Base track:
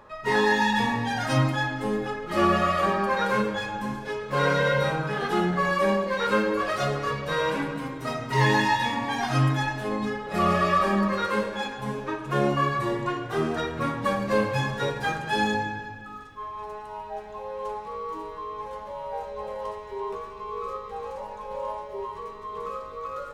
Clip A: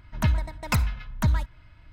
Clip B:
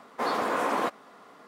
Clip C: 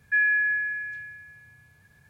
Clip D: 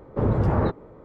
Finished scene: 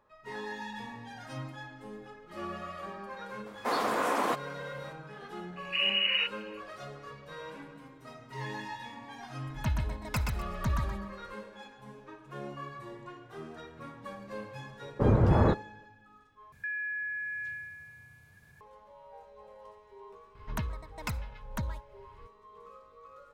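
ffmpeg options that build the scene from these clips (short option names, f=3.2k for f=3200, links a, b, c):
-filter_complex "[4:a]asplit=2[a][b];[1:a]asplit=2[c][d];[0:a]volume=-18dB[e];[2:a]highshelf=f=4.9k:g=5[f];[a]lowpass=f=2.6k:t=q:w=0.5098,lowpass=f=2.6k:t=q:w=0.6013,lowpass=f=2.6k:t=q:w=0.9,lowpass=f=2.6k:t=q:w=2.563,afreqshift=-3000[g];[c]aecho=1:1:125|250|375:0.631|0.158|0.0394[h];[b]agate=range=-33dB:threshold=-38dB:ratio=3:release=100:detection=peak[i];[3:a]acompressor=threshold=-34dB:ratio=6:attack=3.2:release=140:knee=1:detection=peak[j];[d]acompressor=threshold=-28dB:ratio=12:attack=16:release=811:knee=1:detection=rms[k];[e]asplit=2[l][m];[l]atrim=end=16.524[n];[j]atrim=end=2.09,asetpts=PTS-STARTPTS,volume=-0.5dB[o];[m]atrim=start=18.606[p];[f]atrim=end=1.47,asetpts=PTS-STARTPTS,volume=-2dB,afade=t=in:d=0.004:c=hsin,afade=t=out:st=1.466:d=0.004:c=hsin,adelay=3460[q];[g]atrim=end=1.04,asetpts=PTS-STARTPTS,volume=-7.5dB,afade=t=in:d=0.004:c=hsin,afade=t=out:st=1.036:d=0.004:c=hsin,adelay=5560[r];[h]atrim=end=1.92,asetpts=PTS-STARTPTS,volume=-8.5dB,afade=t=in:d=0.004:c=hsin,afade=t=out:st=1.916:d=0.004:c=hsin,adelay=9420[s];[i]atrim=end=1.04,asetpts=PTS-STARTPTS,volume=-1.5dB,afade=t=in:d=0.004:c=hsin,afade=t=out:st=1.036:d=0.004:c=hsin,adelay=14830[t];[k]atrim=end=1.92,asetpts=PTS-STARTPTS,volume=-2.5dB,afade=t=in:d=0.004:c=hsin,afade=t=out:st=1.916:d=0.004:c=hsin,adelay=20350[u];[n][o]acrossfade=d=0.004:c1=hsin:c2=hsin[v];[v][p]acrossfade=d=0.004:c1=hsin:c2=hsin[w];[w][q][r][s][t][u]amix=inputs=6:normalize=0"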